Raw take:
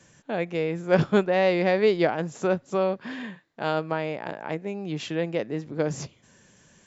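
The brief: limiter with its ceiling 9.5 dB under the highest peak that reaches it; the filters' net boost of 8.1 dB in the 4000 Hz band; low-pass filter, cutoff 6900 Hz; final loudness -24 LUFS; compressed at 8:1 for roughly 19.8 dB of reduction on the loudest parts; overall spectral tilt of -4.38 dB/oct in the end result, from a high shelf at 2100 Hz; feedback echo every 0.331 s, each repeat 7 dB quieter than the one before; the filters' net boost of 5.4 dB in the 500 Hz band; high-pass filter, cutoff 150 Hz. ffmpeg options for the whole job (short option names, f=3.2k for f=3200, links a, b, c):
-af "highpass=150,lowpass=6.9k,equalizer=f=500:t=o:g=6,highshelf=f=2.1k:g=5.5,equalizer=f=4k:t=o:g=5.5,acompressor=threshold=-32dB:ratio=8,alimiter=level_in=2.5dB:limit=-24dB:level=0:latency=1,volume=-2.5dB,aecho=1:1:331|662|993|1324|1655:0.447|0.201|0.0905|0.0407|0.0183,volume=13dB"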